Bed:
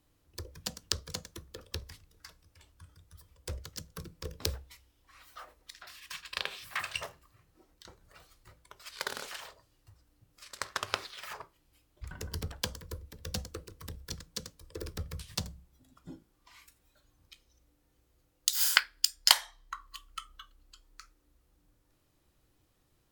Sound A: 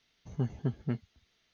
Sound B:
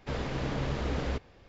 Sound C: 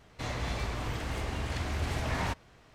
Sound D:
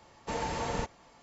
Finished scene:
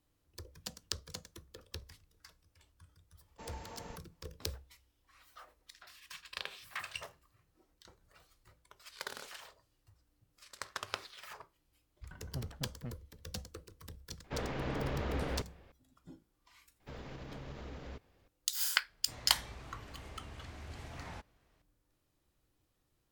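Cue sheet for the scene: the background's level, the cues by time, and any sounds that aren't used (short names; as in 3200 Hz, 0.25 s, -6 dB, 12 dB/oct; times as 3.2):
bed -6.5 dB
3.11 add D -15.5 dB, fades 0.10 s + expander -53 dBFS
11.96 add A -11.5 dB + minimum comb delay 0.95 ms
14.24 add B -3 dB + tone controls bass -3 dB, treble -8 dB
16.8 add B -12.5 dB + limiter -25 dBFS
18.88 add C -15 dB + record warp 45 rpm, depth 160 cents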